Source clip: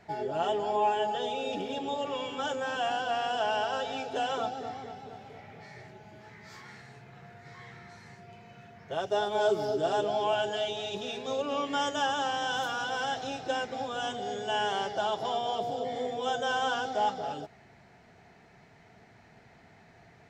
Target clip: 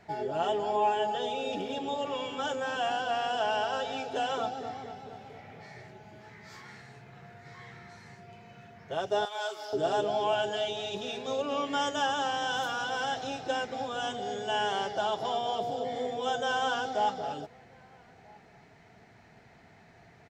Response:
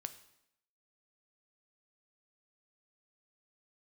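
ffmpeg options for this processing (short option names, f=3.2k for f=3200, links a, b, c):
-filter_complex "[0:a]asettb=1/sr,asplit=3[a][b][c];[a]atrim=end=9.254[d];[b]atrim=start=9.25:end=9.73,asetpts=PTS-STARTPTS,afade=t=in:d=0.004:c=qsin,afade=t=out:st=0.476:d=0.004:c=qsin,highpass=1.1k[e];[c]atrim=start=9.726[f];[d][e]acrossfade=d=0.004:c1=hsin:c2=qsin[g];[g][f]acrossfade=d=0.004:c1=qsin:c2=hsin,asplit=2[h][i];[i]adelay=1283,volume=-27dB,highshelf=f=4k:g=-28.9[j];[h][j]amix=inputs=2:normalize=0"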